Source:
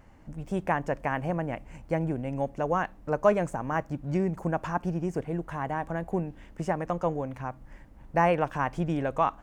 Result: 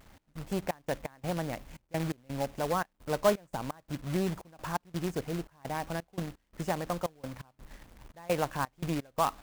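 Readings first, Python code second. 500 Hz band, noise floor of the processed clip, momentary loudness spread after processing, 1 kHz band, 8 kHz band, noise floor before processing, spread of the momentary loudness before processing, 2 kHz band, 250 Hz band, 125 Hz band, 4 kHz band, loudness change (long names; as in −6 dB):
−4.5 dB, −74 dBFS, 14 LU, −5.5 dB, +8.5 dB, −52 dBFS, 11 LU, −5.5 dB, −5.0 dB, −5.0 dB, can't be measured, −4.5 dB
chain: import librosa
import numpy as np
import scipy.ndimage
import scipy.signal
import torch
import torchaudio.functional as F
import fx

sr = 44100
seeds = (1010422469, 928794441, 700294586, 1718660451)

y = fx.quant_companded(x, sr, bits=4)
y = fx.step_gate(y, sr, bpm=85, pattern='x.xx.x.xxx.x.xx', floor_db=-24.0, edge_ms=4.5)
y = y * 10.0 ** (-3.5 / 20.0)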